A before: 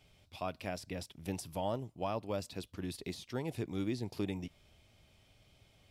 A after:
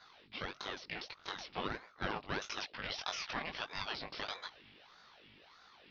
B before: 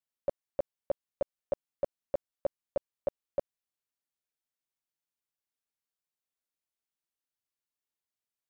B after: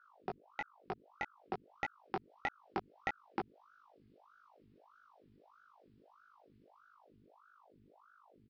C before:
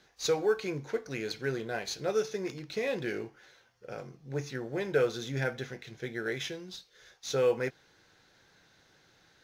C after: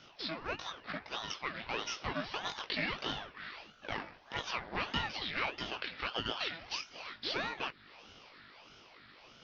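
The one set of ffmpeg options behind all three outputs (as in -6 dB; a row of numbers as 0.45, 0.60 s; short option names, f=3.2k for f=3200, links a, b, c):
-af "highpass=640,equalizer=f=2.1k:t=o:w=2.5:g=11.5,acompressor=threshold=-37dB:ratio=5,aeval=exprs='0.0631*(cos(1*acos(clip(val(0)/0.0631,-1,1)))-cos(1*PI/2))+0.00631*(cos(6*acos(clip(val(0)/0.0631,-1,1)))-cos(6*PI/2))':c=same,dynaudnorm=f=110:g=31:m=4dB,flanger=delay=18.5:depth=2.3:speed=1.1,aresample=11025,acrusher=bits=6:mode=log:mix=0:aa=0.000001,aresample=44100,aeval=exprs='val(0)+0.000501*(sin(2*PI*50*n/s)+sin(2*PI*2*50*n/s)/2+sin(2*PI*3*50*n/s)/3+sin(2*PI*4*50*n/s)/4+sin(2*PI*5*50*n/s)/5)':c=same,aeval=exprs='val(0)*sin(2*PI*790*n/s+790*0.8/1.6*sin(2*PI*1.6*n/s))':c=same,volume=4.5dB"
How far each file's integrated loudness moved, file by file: -1.5, -5.0, -5.0 LU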